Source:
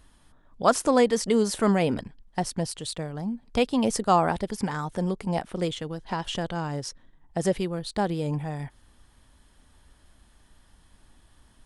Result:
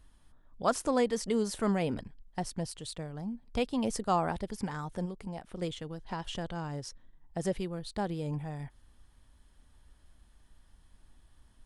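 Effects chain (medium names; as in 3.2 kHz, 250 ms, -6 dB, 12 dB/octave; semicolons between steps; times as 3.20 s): bass shelf 84 Hz +8 dB; 5.05–5.62 s: compression 6:1, threshold -28 dBFS, peak gain reduction 7.5 dB; trim -8 dB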